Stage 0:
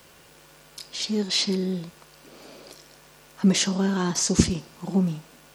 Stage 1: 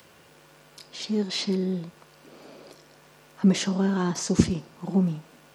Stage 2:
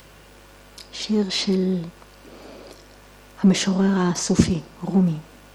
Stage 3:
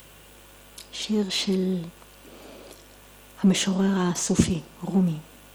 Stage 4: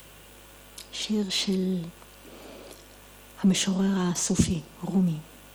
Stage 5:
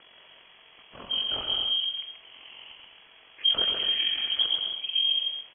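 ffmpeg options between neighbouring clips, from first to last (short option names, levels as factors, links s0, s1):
-filter_complex "[0:a]highpass=79,highshelf=f=2700:g=-9,acrossover=split=1700[s0][s1];[s1]acompressor=mode=upward:threshold=0.002:ratio=2.5[s2];[s0][s2]amix=inputs=2:normalize=0"
-filter_complex "[0:a]aeval=exprs='val(0)+0.00141*(sin(2*PI*50*n/s)+sin(2*PI*2*50*n/s)/2+sin(2*PI*3*50*n/s)/3+sin(2*PI*4*50*n/s)/4+sin(2*PI*5*50*n/s)/5)':c=same,asplit=2[s0][s1];[s1]asoftclip=type=hard:threshold=0.0891,volume=0.562[s2];[s0][s2]amix=inputs=2:normalize=0,volume=1.19"
-af "aexciter=amount=1.1:drive=7.3:freq=2700,volume=0.668"
-filter_complex "[0:a]acrossover=split=200|3000[s0][s1][s2];[s1]acompressor=threshold=0.0158:ratio=1.5[s3];[s0][s3][s2]amix=inputs=3:normalize=0"
-filter_complex "[0:a]tremolo=f=44:d=0.667,asplit=2[s0][s1];[s1]aecho=0:1:130|214.5|269.4|305.1|328.3:0.631|0.398|0.251|0.158|0.1[s2];[s0][s2]amix=inputs=2:normalize=0,lowpass=f=2900:t=q:w=0.5098,lowpass=f=2900:t=q:w=0.6013,lowpass=f=2900:t=q:w=0.9,lowpass=f=2900:t=q:w=2.563,afreqshift=-3400"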